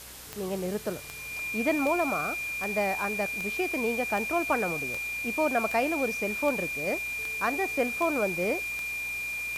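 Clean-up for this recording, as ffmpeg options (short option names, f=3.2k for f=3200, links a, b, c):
-af "adeclick=t=4,bandreject=f=62.3:t=h:w=4,bandreject=f=124.6:t=h:w=4,bandreject=f=186.9:t=h:w=4,bandreject=f=249.2:t=h:w=4,bandreject=f=311.5:t=h:w=4,bandreject=f=373.8:t=h:w=4,bandreject=f=2.4k:w=30,afwtdn=0.0063"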